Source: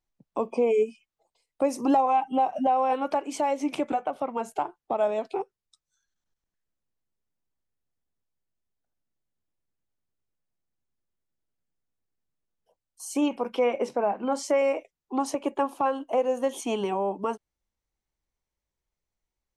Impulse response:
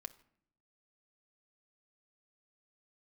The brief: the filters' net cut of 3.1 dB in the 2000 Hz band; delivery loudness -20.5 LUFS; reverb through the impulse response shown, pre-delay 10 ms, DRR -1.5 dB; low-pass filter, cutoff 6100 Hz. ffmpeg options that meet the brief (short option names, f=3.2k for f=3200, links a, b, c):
-filter_complex "[0:a]lowpass=6.1k,equalizer=f=2k:t=o:g=-4,asplit=2[a][b];[1:a]atrim=start_sample=2205,adelay=10[c];[b][c]afir=irnorm=-1:irlink=0,volume=6dB[d];[a][d]amix=inputs=2:normalize=0,volume=3.5dB"